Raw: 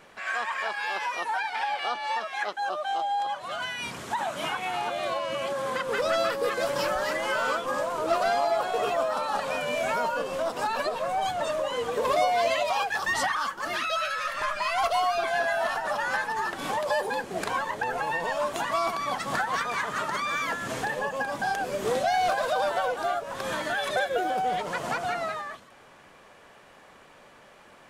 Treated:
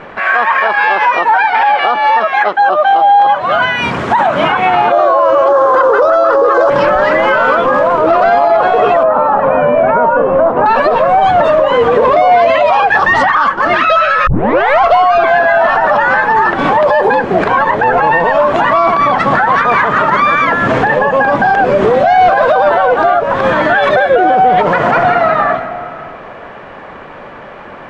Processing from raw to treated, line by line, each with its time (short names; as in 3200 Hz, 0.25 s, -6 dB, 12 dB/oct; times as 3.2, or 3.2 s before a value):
3.75–4.27 high shelf 7900 Hz +9.5 dB
4.92–6.7 EQ curve 120 Hz 0 dB, 180 Hz -21 dB, 320 Hz +10 dB, 1300 Hz +14 dB, 2200 Hz -6 dB, 3700 Hz +3 dB, 6300 Hz +12 dB, 13000 Hz -1 dB
9.03–10.66 LPF 1300 Hz
14.27 tape start 0.54 s
24.67–25.32 reverb throw, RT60 2.3 s, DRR 5 dB
whole clip: LPF 1900 Hz 12 dB/oct; maximiser +24 dB; gain -1 dB